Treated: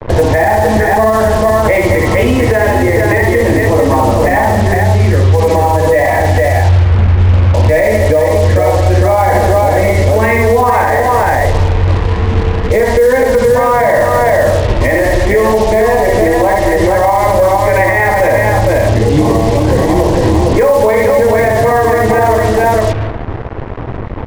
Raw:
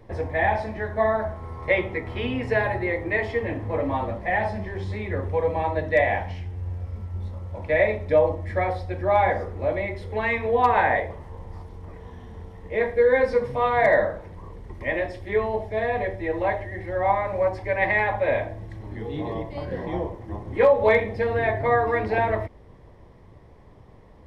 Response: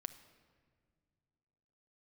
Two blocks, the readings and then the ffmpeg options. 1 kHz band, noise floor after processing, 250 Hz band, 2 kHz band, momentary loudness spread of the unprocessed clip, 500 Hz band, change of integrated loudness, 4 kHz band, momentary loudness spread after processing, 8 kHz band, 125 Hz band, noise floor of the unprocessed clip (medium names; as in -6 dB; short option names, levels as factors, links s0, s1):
+13.5 dB, -17 dBFS, +18.0 dB, +11.0 dB, 15 LU, +14.0 dB, +14.0 dB, +17.0 dB, 3 LU, no reading, +20.5 dB, -49 dBFS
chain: -filter_complex "[0:a]lowpass=3400,lowshelf=f=350:g=2,aecho=1:1:55|64|65|212|456:0.141|0.596|0.2|0.237|0.596,asplit=2[s0][s1];[1:a]atrim=start_sample=2205,lowpass=2100[s2];[s1][s2]afir=irnorm=-1:irlink=0,volume=1.5[s3];[s0][s3]amix=inputs=2:normalize=0,acompressor=threshold=0.1:ratio=4,equalizer=f=170:w=7.8:g=-7.5,acrusher=bits=5:mix=0:aa=0.5,alimiter=level_in=8.41:limit=0.891:release=50:level=0:latency=1,volume=0.891"